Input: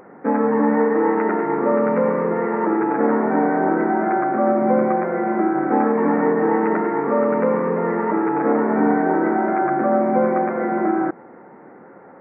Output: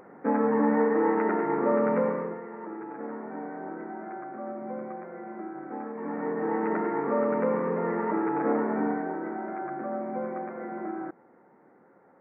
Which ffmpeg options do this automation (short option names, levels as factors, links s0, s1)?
-af "volume=1.88,afade=t=out:st=1.96:d=0.45:silence=0.223872,afade=t=in:st=5.94:d=0.9:silence=0.266073,afade=t=out:st=8.53:d=0.63:silence=0.421697"